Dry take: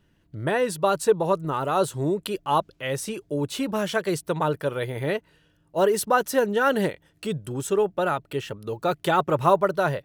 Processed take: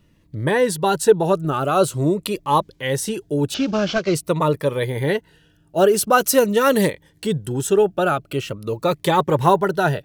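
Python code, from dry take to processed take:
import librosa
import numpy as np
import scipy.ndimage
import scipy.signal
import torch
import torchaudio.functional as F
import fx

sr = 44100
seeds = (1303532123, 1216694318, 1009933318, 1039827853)

y = fx.cvsd(x, sr, bps=32000, at=(3.54, 4.15))
y = fx.high_shelf(y, sr, hz=3900.0, db=7.5, at=(6.12, 6.9))
y = fx.notch_cascade(y, sr, direction='falling', hz=0.46)
y = y * 10.0 ** (7.0 / 20.0)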